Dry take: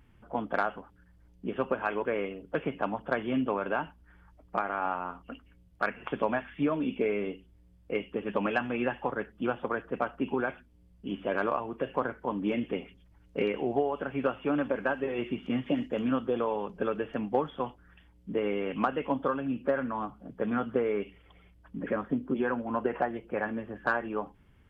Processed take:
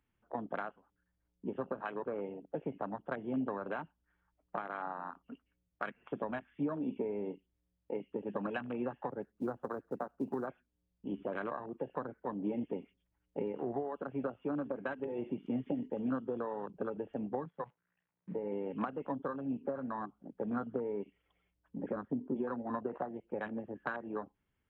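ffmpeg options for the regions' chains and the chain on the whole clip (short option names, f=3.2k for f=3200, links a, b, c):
-filter_complex "[0:a]asettb=1/sr,asplit=3[a][b][c];[a]atrim=end=9.224[d];[b]atrim=start=9.22:end=10.47,asetpts=PTS-STARTPTS,afade=t=in:d=0.004:c=qsin,afade=t=out:st=1.246:d=0.004:c=qsin,lowpass=1.4k,acrusher=bits=6:mode=log:mix=0:aa=0.000001[e];[c]atrim=start=10.466[f];[d][e]acrossfade=d=0.004:c1=hsin:c2=qsin[g];[g][f]acrossfade=d=0.004:c1=qsin:c2=hsin,asettb=1/sr,asplit=3[h][i][j];[h]atrim=end=17.454[k];[i]atrim=start=17.45:end=18.52,asetpts=PTS-STARTPTS,afade=t=in:d=0.004:c=qsin,afade=t=out:st=1.066:d=0.004:c=qsin,acrusher=bits=8:dc=4:mix=0:aa=0.000001,highpass=160,equalizer=f=170:t=q:w=4:g=8,equalizer=f=250:t=q:w=4:g=-9,equalizer=f=360:t=q:w=4:g=-7,equalizer=f=730:t=q:w=4:g=-4,equalizer=f=1.3k:t=q:w=4:g=-5,lowpass=f=2.3k:w=0.5412,lowpass=f=2.3k:w=1.3066[l];[j]atrim=start=18.516[m];[k][l]acrossfade=d=0.004:c1=hsin:c2=qsin[n];[n][m]acrossfade=d=0.004:c1=qsin:c2=hsin,afwtdn=0.0224,lowshelf=f=230:g=-7.5,acrossover=split=230[o][p];[p]acompressor=threshold=-36dB:ratio=5[q];[o][q]amix=inputs=2:normalize=0"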